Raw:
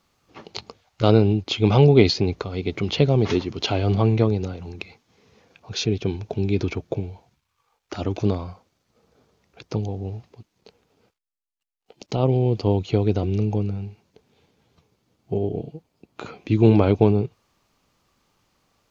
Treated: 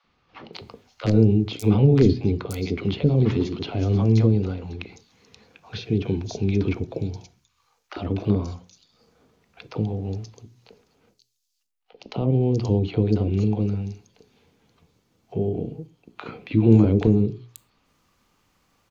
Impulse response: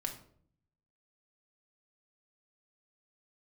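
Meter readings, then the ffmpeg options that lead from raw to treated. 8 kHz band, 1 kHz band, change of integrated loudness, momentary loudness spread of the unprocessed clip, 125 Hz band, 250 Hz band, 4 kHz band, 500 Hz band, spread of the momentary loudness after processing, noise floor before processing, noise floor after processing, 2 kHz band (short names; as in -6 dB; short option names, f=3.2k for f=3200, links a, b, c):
n/a, -7.5 dB, -0.5 dB, 21 LU, +0.5 dB, +1.0 dB, -8.5 dB, -3.5 dB, 21 LU, -76 dBFS, -70 dBFS, -5.5 dB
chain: -filter_complex "[0:a]bandreject=f=60:t=h:w=6,bandreject=f=120:t=h:w=6,bandreject=f=180:t=h:w=6,bandreject=f=240:t=h:w=6,bandreject=f=300:t=h:w=6,bandreject=f=360:t=h:w=6,bandreject=f=420:t=h:w=6,aeval=exprs='(mod(1.41*val(0)+1,2)-1)/1.41':c=same,acrossover=split=430[a][b];[b]acompressor=threshold=-34dB:ratio=6[c];[a][c]amix=inputs=2:normalize=0,acrossover=split=630|4600[d][e][f];[d]adelay=40[g];[f]adelay=530[h];[g][e][h]amix=inputs=3:normalize=0,asplit=2[i][j];[1:a]atrim=start_sample=2205,atrim=end_sample=6174[k];[j][k]afir=irnorm=-1:irlink=0,volume=-9dB[l];[i][l]amix=inputs=2:normalize=0"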